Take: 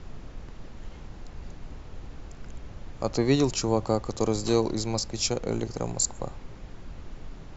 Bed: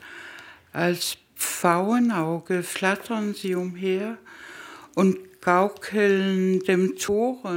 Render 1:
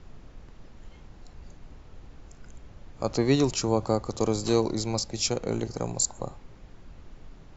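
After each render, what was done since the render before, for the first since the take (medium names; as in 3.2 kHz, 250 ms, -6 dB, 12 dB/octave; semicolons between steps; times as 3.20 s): noise print and reduce 6 dB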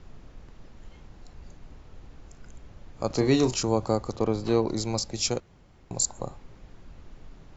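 3.07–3.63 s: doubling 32 ms -8 dB; 4.16–4.68 s: low-pass 3 kHz; 5.40–5.91 s: room tone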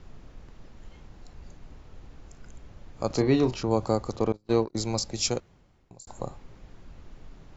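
3.22–3.71 s: distance through air 200 m; 4.32–4.75 s: gate -26 dBFS, range -33 dB; 5.35–6.07 s: fade out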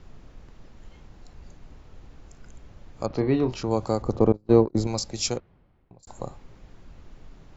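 3.06–3.51 s: distance through air 270 m; 4.02–4.87 s: tilt shelf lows +8 dB, about 1.4 kHz; 5.37–6.03 s: distance through air 340 m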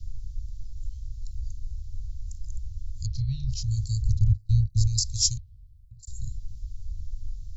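inverse Chebyshev band-stop 380–1100 Hz, stop band 80 dB; tone controls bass +14 dB, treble +7 dB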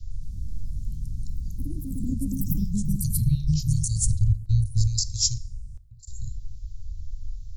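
ever faster or slower copies 106 ms, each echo +5 st, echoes 3; plate-style reverb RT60 0.88 s, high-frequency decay 0.6×, DRR 15.5 dB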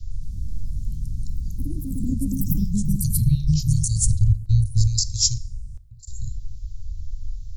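trim +3.5 dB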